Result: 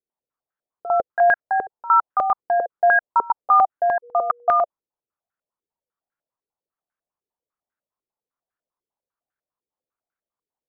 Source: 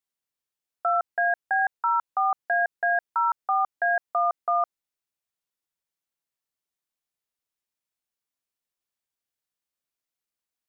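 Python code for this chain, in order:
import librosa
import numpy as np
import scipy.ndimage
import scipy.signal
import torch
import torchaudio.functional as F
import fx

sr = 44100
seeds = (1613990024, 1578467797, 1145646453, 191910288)

y = fx.dmg_tone(x, sr, hz=480.0, level_db=-50.0, at=(4.02, 4.53), fade=0.02)
y = fx.filter_held_lowpass(y, sr, hz=10.0, low_hz=430.0, high_hz=1500.0)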